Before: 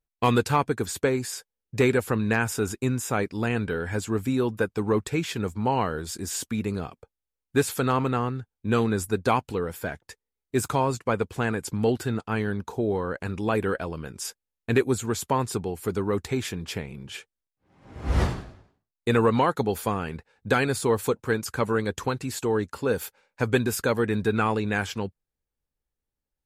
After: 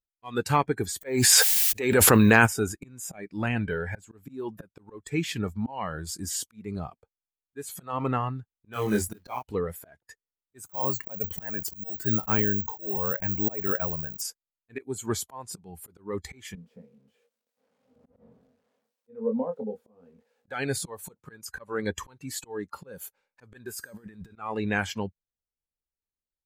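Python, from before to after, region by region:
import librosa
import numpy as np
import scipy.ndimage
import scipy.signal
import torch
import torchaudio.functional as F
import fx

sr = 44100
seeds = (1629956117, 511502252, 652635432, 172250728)

y = fx.low_shelf(x, sr, hz=240.0, db=-5.5, at=(1.01, 2.45), fade=0.02)
y = fx.dmg_noise_colour(y, sr, seeds[0], colour='blue', level_db=-62.0, at=(1.01, 2.45), fade=0.02)
y = fx.env_flatten(y, sr, amount_pct=100, at=(1.01, 2.45), fade=0.02)
y = fx.chain(y, sr, fx.quant_float(bits=2),
    fx.doubler(ms=24.0, db=-3), at=(8.73, 9.43))
y = fx.chain(y, sr, fx.resample_bad(factor=2, down='filtered', up='zero_stuff'),
    fx.sustainer(db_per_s=140.0), at=(10.66, 14.22))
y = fx.chain(y, sr, fx.crossing_spikes(level_db=-22.5),
    fx.double_bandpass(hz=340.0, octaves=0.99),
    fx.doubler(ms=23.0, db=-5.0), at=(16.55, 20.48))
y = fx.chain(y, sr, fx.over_compress(threshold_db=-32.0, ratio=-1.0),
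    fx.comb_fb(f0_hz=320.0, decay_s=0.74, harmonics='all', damping=0.0, mix_pct=60), at=(23.71, 24.36))
y = fx.auto_swell(y, sr, attack_ms=295.0)
y = fx.noise_reduce_blind(y, sr, reduce_db=12)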